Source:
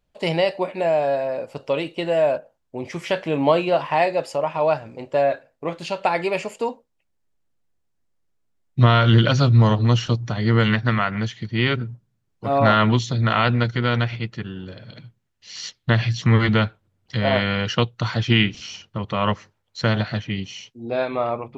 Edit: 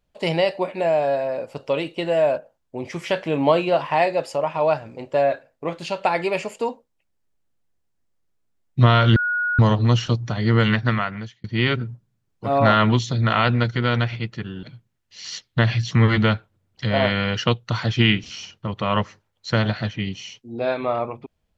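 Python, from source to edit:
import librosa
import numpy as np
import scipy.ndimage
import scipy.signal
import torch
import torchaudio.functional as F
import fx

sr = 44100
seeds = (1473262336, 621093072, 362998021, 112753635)

y = fx.edit(x, sr, fx.bleep(start_s=9.16, length_s=0.43, hz=1450.0, db=-19.5),
    fx.fade_out_span(start_s=10.88, length_s=0.56),
    fx.cut(start_s=14.63, length_s=0.31), tone=tone)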